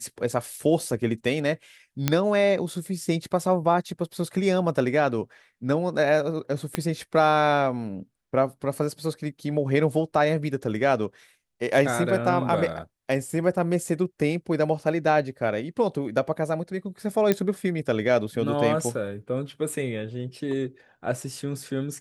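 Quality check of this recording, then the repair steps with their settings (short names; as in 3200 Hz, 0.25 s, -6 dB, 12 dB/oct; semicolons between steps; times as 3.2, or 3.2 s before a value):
2.08 pop -6 dBFS
6.75 pop -10 dBFS
17.32 pop -8 dBFS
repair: de-click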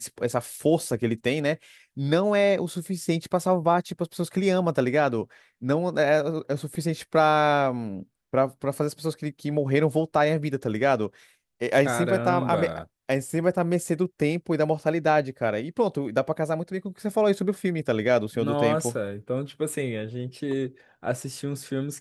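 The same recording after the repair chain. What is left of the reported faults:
6.75 pop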